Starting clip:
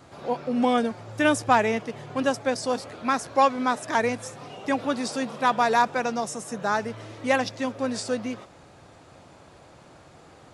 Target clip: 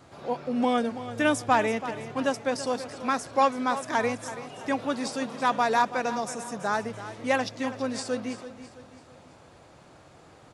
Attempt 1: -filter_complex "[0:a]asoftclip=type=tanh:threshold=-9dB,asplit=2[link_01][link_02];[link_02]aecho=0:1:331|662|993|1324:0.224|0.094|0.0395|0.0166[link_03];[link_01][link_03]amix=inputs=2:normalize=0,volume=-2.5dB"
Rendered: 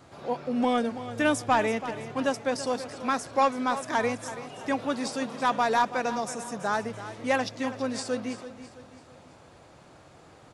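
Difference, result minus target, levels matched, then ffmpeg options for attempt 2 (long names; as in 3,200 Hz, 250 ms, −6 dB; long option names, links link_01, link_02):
soft clipping: distortion +16 dB
-filter_complex "[0:a]asoftclip=type=tanh:threshold=0dB,asplit=2[link_01][link_02];[link_02]aecho=0:1:331|662|993|1324:0.224|0.094|0.0395|0.0166[link_03];[link_01][link_03]amix=inputs=2:normalize=0,volume=-2.5dB"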